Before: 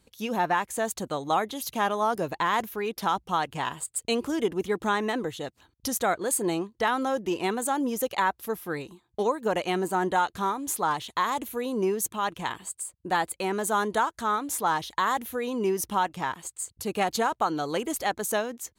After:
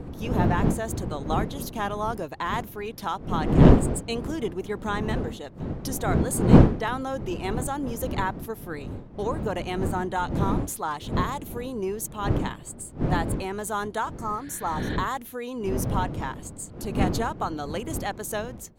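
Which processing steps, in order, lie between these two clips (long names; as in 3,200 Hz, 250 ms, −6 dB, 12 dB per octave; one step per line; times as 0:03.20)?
wind on the microphone 250 Hz −23 dBFS
healed spectral selection 0:14.21–0:14.94, 1,400–5,400 Hz both
level −3.5 dB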